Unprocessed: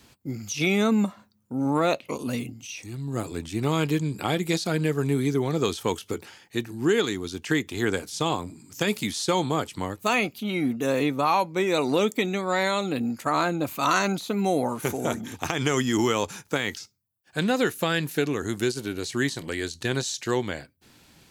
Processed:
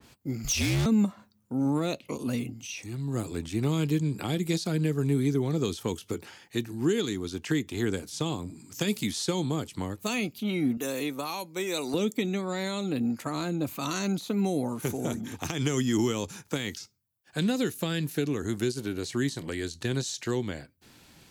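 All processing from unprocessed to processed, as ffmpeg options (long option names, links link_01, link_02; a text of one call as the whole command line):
ffmpeg -i in.wav -filter_complex "[0:a]asettb=1/sr,asplit=3[link_01][link_02][link_03];[link_01]atrim=end=0.444[link_04];[link_02]atrim=start=0.44:end=0.86,asetpts=PTS-STARTPTS,afade=type=in:duration=0.004:curve=qsin,afade=type=out:start_time=0.416:duration=0.004:curve=qsin,acontrast=87,afreqshift=-63,asoftclip=type=hard:threshold=-22.5dB[link_05];[link_03]atrim=start=0.856[link_06];[link_04][link_05]acrossfade=duration=0.004:curve1=hsin:curve2=qsin[link_07];[link_07][link_06]acrossfade=duration=0.004:curve1=qsin:curve2=hsin,asettb=1/sr,asplit=3[link_08][link_09][link_10];[link_08]atrim=end=10.774[link_11];[link_09]atrim=start=10.77:end=11.94,asetpts=PTS-STARTPTS,afade=type=in:duration=0.004:curve=qsin,afade=type=out:start_time=1.166:duration=0.004:curve=qsin,highpass=frequency=480:poles=1,highshelf=frequency=6600:gain=10.5[link_12];[link_10]atrim=start=11.936[link_13];[link_11][link_12]acrossfade=duration=0.004:curve1=hsin:curve2=qsin[link_14];[link_14][link_13]acrossfade=duration=0.004:curve1=qsin:curve2=hsin,acrossover=split=370|3000[link_15][link_16][link_17];[link_16]acompressor=threshold=-37dB:ratio=5[link_18];[link_15][link_18][link_17]amix=inputs=3:normalize=0,adynamicequalizer=threshold=0.00447:dfrequency=2300:dqfactor=0.7:tfrequency=2300:tqfactor=0.7:attack=5:release=100:ratio=0.375:range=2:mode=cutabove:tftype=highshelf" out.wav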